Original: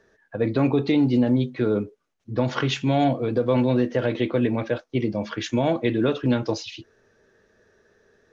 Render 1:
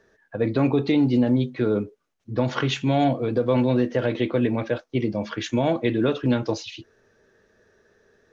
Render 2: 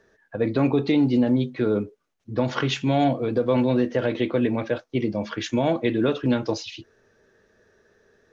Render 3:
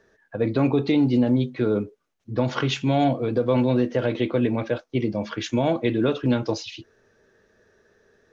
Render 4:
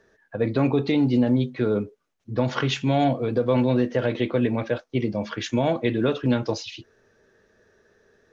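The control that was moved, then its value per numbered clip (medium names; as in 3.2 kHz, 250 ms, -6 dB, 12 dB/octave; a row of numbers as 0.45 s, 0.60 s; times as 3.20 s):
dynamic bell, frequency: 5.1 kHz, 120 Hz, 1.8 kHz, 320 Hz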